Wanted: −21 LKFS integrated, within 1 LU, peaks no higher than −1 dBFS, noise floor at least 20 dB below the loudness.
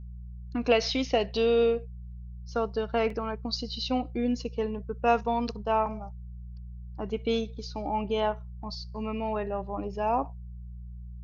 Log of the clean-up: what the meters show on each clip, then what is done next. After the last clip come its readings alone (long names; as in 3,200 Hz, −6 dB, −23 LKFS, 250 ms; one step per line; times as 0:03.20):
number of dropouts 1; longest dropout 3.2 ms; mains hum 60 Hz; hum harmonics up to 180 Hz; level of the hum −39 dBFS; integrated loudness −29.5 LKFS; sample peak −10.5 dBFS; target loudness −21.0 LKFS
→ repair the gap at 0:03.10, 3.2 ms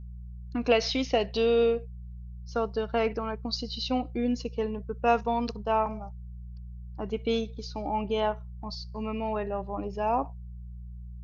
number of dropouts 0; mains hum 60 Hz; hum harmonics up to 180 Hz; level of the hum −39 dBFS
→ hum removal 60 Hz, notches 3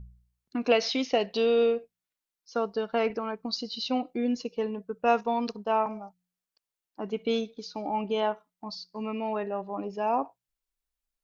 mains hum none found; integrated loudness −29.5 LKFS; sample peak −10.5 dBFS; target loudness −21.0 LKFS
→ level +8.5 dB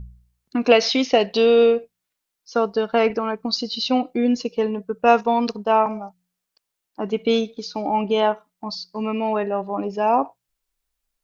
integrated loudness −21.0 LKFS; sample peak −2.0 dBFS; background noise floor −82 dBFS